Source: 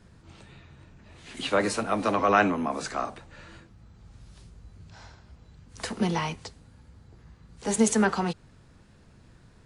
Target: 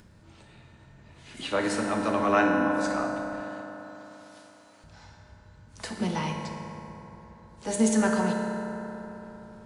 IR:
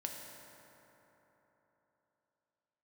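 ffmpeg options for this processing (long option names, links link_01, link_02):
-filter_complex "[0:a]asettb=1/sr,asplit=3[link_01][link_02][link_03];[link_01]atrim=end=3.414[link_04];[link_02]atrim=start=3.41:end=4.84,asetpts=PTS-STARTPTS,afade=type=in:duration=0.004:curve=qsin,afade=type=out:start_time=1.426:duration=0.004:curve=qsin,highpass=830[link_05];[link_03]atrim=start=4.836[link_06];[link_04][link_05]acrossfade=duration=0.004:curve1=hsin:curve2=qsin[link_07];[link_07][link_06]acrossfade=duration=0.004:curve1=qsin:curve2=hsin,acompressor=mode=upward:threshold=-47dB:ratio=2.5[link_08];[1:a]atrim=start_sample=2205[link_09];[link_08][link_09]afir=irnorm=-1:irlink=0,volume=-1dB"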